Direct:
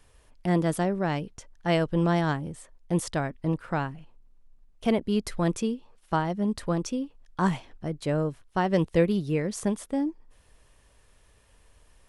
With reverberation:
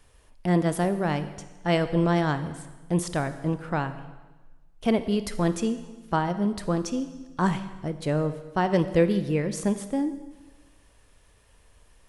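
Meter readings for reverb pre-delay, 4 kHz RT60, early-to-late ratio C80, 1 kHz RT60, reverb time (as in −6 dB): 26 ms, 1.2 s, 13.5 dB, 1.2 s, 1.2 s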